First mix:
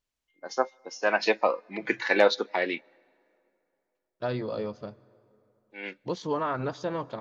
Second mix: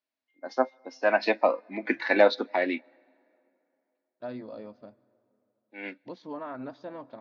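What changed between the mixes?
second voice -9.5 dB; master: add speaker cabinet 150–4400 Hz, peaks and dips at 160 Hz -6 dB, 260 Hz +10 dB, 430 Hz -5 dB, 640 Hz +5 dB, 1200 Hz -3 dB, 3100 Hz -7 dB

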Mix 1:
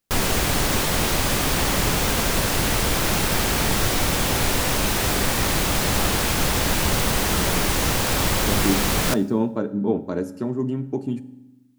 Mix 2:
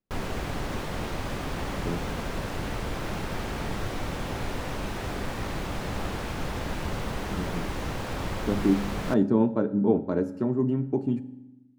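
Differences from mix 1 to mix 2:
background -8.5 dB; master: add LPF 1600 Hz 6 dB/oct

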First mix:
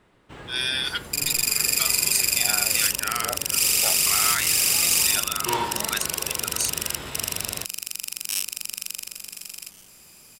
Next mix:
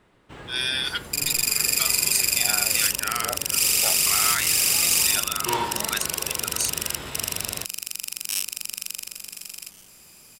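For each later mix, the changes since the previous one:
none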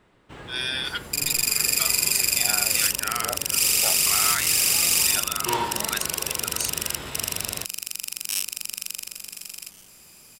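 speech: add tilt -1.5 dB/oct

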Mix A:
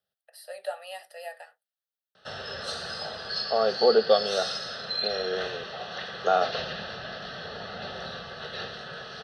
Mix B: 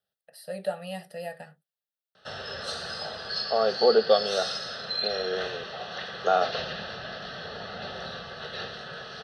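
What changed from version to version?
first voice: remove HPF 600 Hz 24 dB/oct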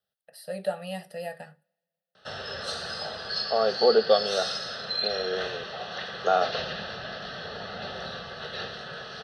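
reverb: on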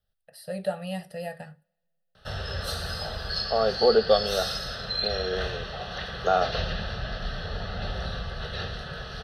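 background: remove LPF 8100 Hz 24 dB/oct; master: remove HPF 220 Hz 12 dB/oct

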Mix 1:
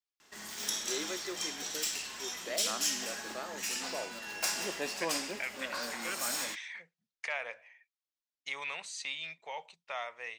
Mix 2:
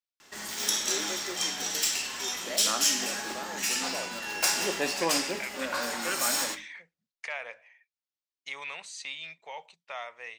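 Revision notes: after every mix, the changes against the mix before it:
background +5.5 dB; reverb: on, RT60 0.35 s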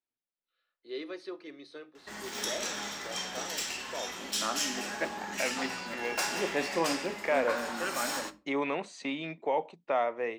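second voice: remove passive tone stack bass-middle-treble 10-0-10; background: entry +1.75 s; master: add high shelf 3400 Hz -11 dB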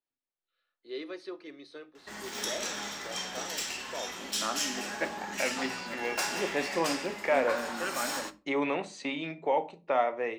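second voice: send on

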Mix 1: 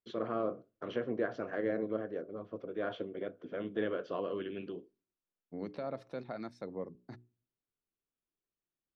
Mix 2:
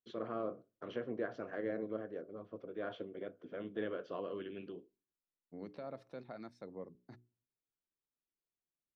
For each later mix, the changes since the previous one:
first voice -5.0 dB; second voice -6.5 dB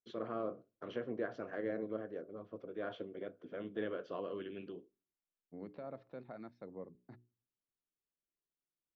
second voice: add air absorption 280 m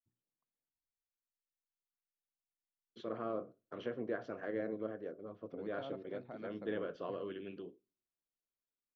first voice: entry +2.90 s

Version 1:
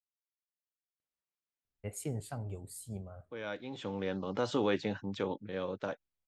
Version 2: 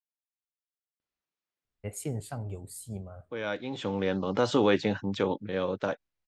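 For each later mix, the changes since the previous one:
first voice +3.5 dB; second voice +7.0 dB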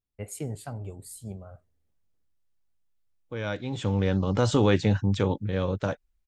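first voice: entry -1.65 s; second voice: remove BPF 240–5100 Hz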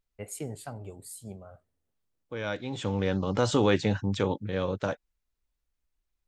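second voice: entry -1.00 s; master: add low shelf 140 Hz -9.5 dB

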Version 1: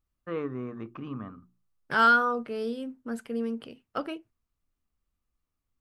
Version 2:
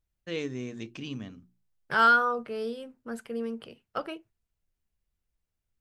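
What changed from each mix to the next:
first voice: remove synth low-pass 1200 Hz, resonance Q 8.9; second voice: add bell 270 Hz -12 dB 0.3 oct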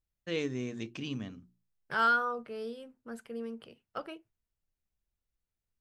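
second voice -6.0 dB

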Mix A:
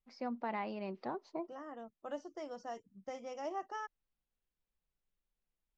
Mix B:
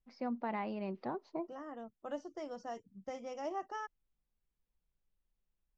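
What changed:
first voice: add air absorption 84 m; master: add low shelf 210 Hz +6.5 dB

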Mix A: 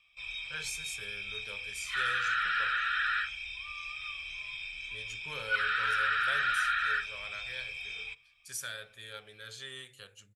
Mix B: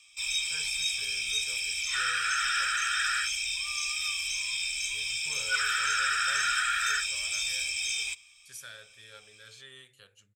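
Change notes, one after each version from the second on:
speech -5.5 dB; first sound: remove air absorption 430 m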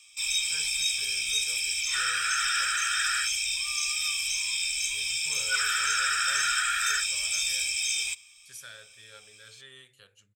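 first sound: add high shelf 6400 Hz +8.5 dB

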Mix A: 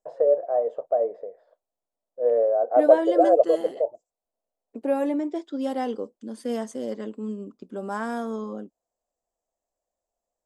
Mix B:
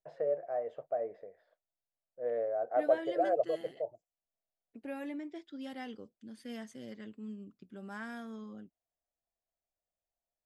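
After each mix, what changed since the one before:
second voice -6.5 dB; master: add ten-band EQ 125 Hz +8 dB, 250 Hz -6 dB, 500 Hz -11 dB, 1000 Hz -10 dB, 2000 Hz +5 dB, 8000 Hz -9 dB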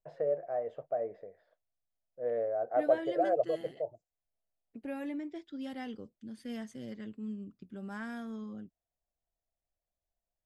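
master: add low shelf 170 Hz +10.5 dB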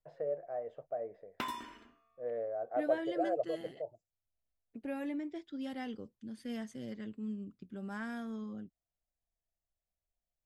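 first voice -5.0 dB; background: unmuted

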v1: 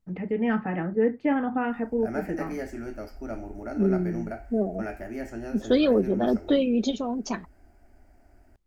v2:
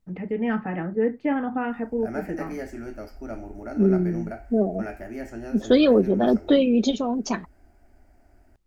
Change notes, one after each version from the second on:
second voice +4.0 dB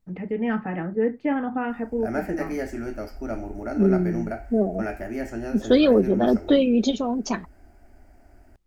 background +4.5 dB

